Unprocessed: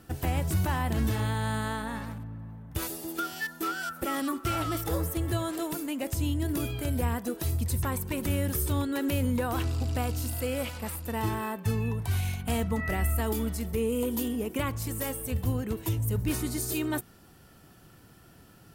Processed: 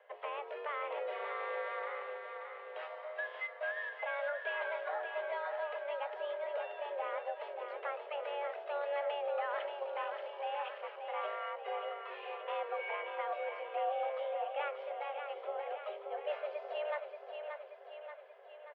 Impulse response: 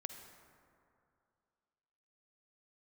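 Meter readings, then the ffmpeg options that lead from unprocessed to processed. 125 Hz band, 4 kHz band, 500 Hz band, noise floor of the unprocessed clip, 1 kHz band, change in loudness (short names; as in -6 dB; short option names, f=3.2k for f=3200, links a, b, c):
under -40 dB, -10.5 dB, -2.0 dB, -55 dBFS, -2.5 dB, -9.0 dB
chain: -af "aecho=1:1:581|1162|1743|2324|2905|3486|4067|4648:0.473|0.274|0.159|0.0923|0.0535|0.0311|0.018|0.0104,highpass=f=190:t=q:w=0.5412,highpass=f=190:t=q:w=1.307,lowpass=f=2.7k:t=q:w=0.5176,lowpass=f=2.7k:t=q:w=0.7071,lowpass=f=2.7k:t=q:w=1.932,afreqshift=290,volume=-7dB" -ar 48000 -c:a libopus -b:a 192k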